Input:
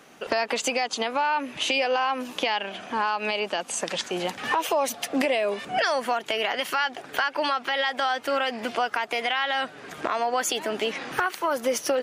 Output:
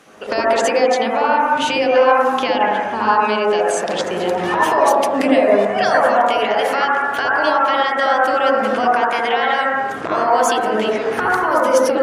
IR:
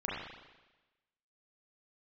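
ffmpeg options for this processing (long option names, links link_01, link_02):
-filter_complex "[1:a]atrim=start_sample=2205,afade=type=out:start_time=0.26:duration=0.01,atrim=end_sample=11907,asetrate=22932,aresample=44100[link_01];[0:a][link_01]afir=irnorm=-1:irlink=0,volume=1dB"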